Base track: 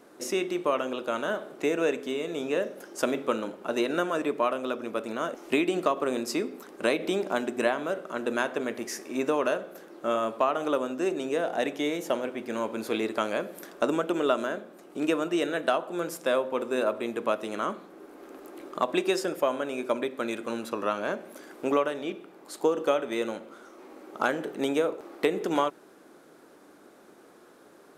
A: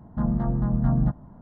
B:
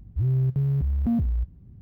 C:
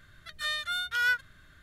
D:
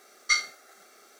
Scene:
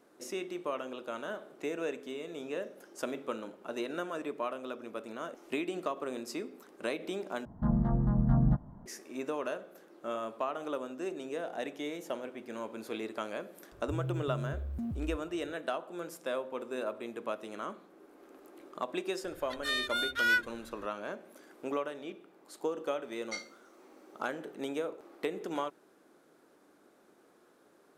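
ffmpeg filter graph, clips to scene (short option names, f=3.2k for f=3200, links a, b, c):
-filter_complex "[0:a]volume=-9.5dB,asplit=2[a][b];[a]atrim=end=7.454[c];[1:a]atrim=end=1.41,asetpts=PTS-STARTPTS,volume=-4dB[d];[b]atrim=start=8.856[e];[2:a]atrim=end=1.81,asetpts=PTS-STARTPTS,volume=-13.5dB,afade=t=in:d=0.004:c=hsin,afade=t=out:st=1.806:d=0.004:c=hsin,adelay=13720[f];[3:a]atrim=end=1.62,asetpts=PTS-STARTPTS,volume=-1dB,afade=t=in:d=0.004:c=hsin,afade=t=out:st=1.616:d=0.004:c=hsin,adelay=848484S[g];[4:a]atrim=end=1.19,asetpts=PTS-STARTPTS,volume=-17dB,afade=t=in:d=0.004:c=hsin,afade=t=out:st=1.186:d=0.004:c=hsin,adelay=23020[h];[c][d]acrossfade=d=0.004:c1=hsin:c2=hsin[i];[i][e]acrossfade=d=0.004:c1=hsin:c2=hsin[j];[j][f][g][h]amix=inputs=4:normalize=0"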